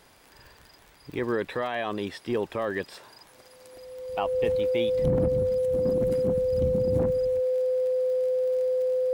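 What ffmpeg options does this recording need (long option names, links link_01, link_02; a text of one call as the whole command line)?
ffmpeg -i in.wav -af "adeclick=threshold=4,bandreject=frequency=510:width=30" out.wav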